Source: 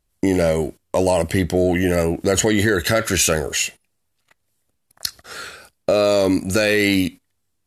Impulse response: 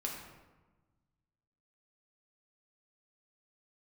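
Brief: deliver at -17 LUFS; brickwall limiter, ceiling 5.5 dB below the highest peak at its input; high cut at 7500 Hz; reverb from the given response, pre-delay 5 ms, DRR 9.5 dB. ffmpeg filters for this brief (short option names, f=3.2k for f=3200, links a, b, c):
-filter_complex "[0:a]lowpass=7.5k,alimiter=limit=-11dB:level=0:latency=1,asplit=2[a][b];[1:a]atrim=start_sample=2205,adelay=5[c];[b][c]afir=irnorm=-1:irlink=0,volume=-11dB[d];[a][d]amix=inputs=2:normalize=0,volume=4.5dB"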